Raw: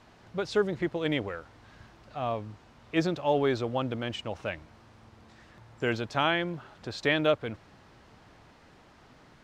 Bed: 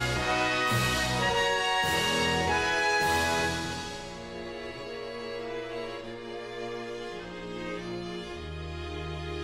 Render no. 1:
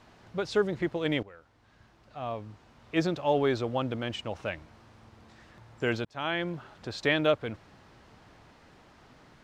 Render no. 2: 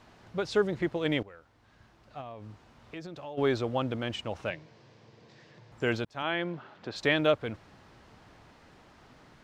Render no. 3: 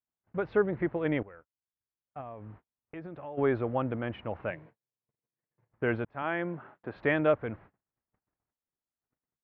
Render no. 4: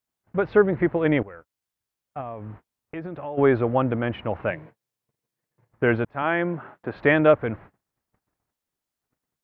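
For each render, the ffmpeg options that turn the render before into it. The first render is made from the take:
ffmpeg -i in.wav -filter_complex "[0:a]asplit=3[link_01][link_02][link_03];[link_01]atrim=end=1.23,asetpts=PTS-STARTPTS,afade=type=out:start_time=1.226:duration=0.004:curve=hsin:silence=0.16788[link_04];[link_02]atrim=start=1.23:end=6.05,asetpts=PTS-STARTPTS,afade=type=in:duration=1.87:silence=0.16788,afade=type=out:start_time=4.816:duration=0.004:curve=hsin[link_05];[link_03]atrim=start=6.05,asetpts=PTS-STARTPTS,afade=type=in:duration=0.42[link_06];[link_04][link_05][link_06]concat=n=3:v=0:a=1" out.wav
ffmpeg -i in.wav -filter_complex "[0:a]asplit=3[link_01][link_02][link_03];[link_01]afade=type=out:start_time=2.2:duration=0.02[link_04];[link_02]acompressor=threshold=-39dB:ratio=6:attack=3.2:release=140:knee=1:detection=peak,afade=type=in:start_time=2.2:duration=0.02,afade=type=out:start_time=3.37:duration=0.02[link_05];[link_03]afade=type=in:start_time=3.37:duration=0.02[link_06];[link_04][link_05][link_06]amix=inputs=3:normalize=0,asettb=1/sr,asplit=3[link_07][link_08][link_09];[link_07]atrim=end=4.504[link_10];[link_08]atrim=start=4.5:end=5.72,asetpts=PTS-STARTPTS,afade=type=in:duration=0.004:curve=qsin,afade=type=out:start_time=1.216:duration=0.004:curve=qsin,highpass=frequency=120:width=0.5412,highpass=frequency=120:width=1.3066,equalizer=frequency=140:width_type=q:width=4:gain=7,equalizer=frequency=240:width_type=q:width=4:gain=-7,equalizer=frequency=460:width_type=q:width=4:gain=6,equalizer=frequency=800:width_type=q:width=4:gain=-5,equalizer=frequency=1300:width_type=q:width=4:gain=-9,equalizer=frequency=4800:width_type=q:width=4:gain=3,lowpass=frequency=6800:width=0.5412,lowpass=frequency=6800:width=1.3066[link_11];[link_09]atrim=start=5.716[link_12];[link_10][link_11]acrossfade=duration=0.004:curve1=hsin:curve2=qsin[link_13];[link_13][link_12]acrossfade=duration=0.004:curve1=qsin:curve2=hsin,asettb=1/sr,asplit=3[link_14][link_15][link_16];[link_14]atrim=end=6.224[link_17];[link_15]atrim=start=6.22:end=6.96,asetpts=PTS-STARTPTS,afade=type=in:duration=0.004:curve=qsin,afade=type=out:start_time=0.736:duration=0.004:curve=qsin,highpass=150,lowpass=4200[link_18];[link_16]atrim=start=6.956[link_19];[link_17][link_18]acrossfade=duration=0.004:curve1=hsin:curve2=qsin[link_20];[link_20][link_19]acrossfade=duration=0.004:curve1=qsin:curve2=hsin" out.wav
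ffmpeg -i in.wav -af "agate=range=-46dB:threshold=-50dB:ratio=16:detection=peak,lowpass=frequency=2100:width=0.5412,lowpass=frequency=2100:width=1.3066" out.wav
ffmpeg -i in.wav -af "volume=8.5dB" out.wav

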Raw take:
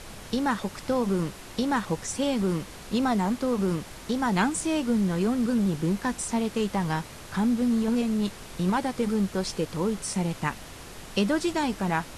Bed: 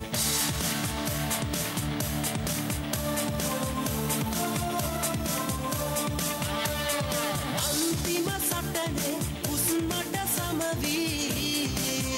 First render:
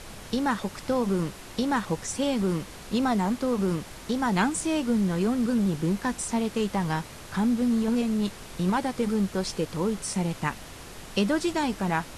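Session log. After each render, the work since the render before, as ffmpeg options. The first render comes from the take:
ffmpeg -i in.wav -af anull out.wav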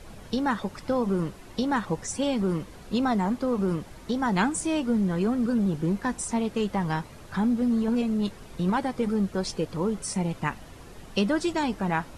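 ffmpeg -i in.wav -af "afftdn=noise_reduction=9:noise_floor=-43" out.wav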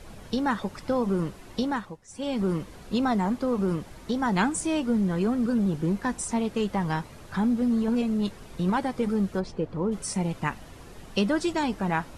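ffmpeg -i in.wav -filter_complex "[0:a]asplit=3[link_01][link_02][link_03];[link_01]afade=type=out:start_time=9.39:duration=0.02[link_04];[link_02]lowpass=frequency=1100:poles=1,afade=type=in:start_time=9.39:duration=0.02,afade=type=out:start_time=9.91:duration=0.02[link_05];[link_03]afade=type=in:start_time=9.91:duration=0.02[link_06];[link_04][link_05][link_06]amix=inputs=3:normalize=0,asplit=3[link_07][link_08][link_09];[link_07]atrim=end=1.98,asetpts=PTS-STARTPTS,afade=type=out:start_time=1.62:duration=0.36:silence=0.1[link_10];[link_08]atrim=start=1.98:end=2.06,asetpts=PTS-STARTPTS,volume=-20dB[link_11];[link_09]atrim=start=2.06,asetpts=PTS-STARTPTS,afade=type=in:duration=0.36:silence=0.1[link_12];[link_10][link_11][link_12]concat=n=3:v=0:a=1" out.wav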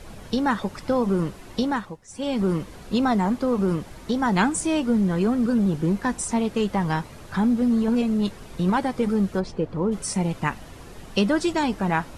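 ffmpeg -i in.wav -af "volume=3.5dB" out.wav

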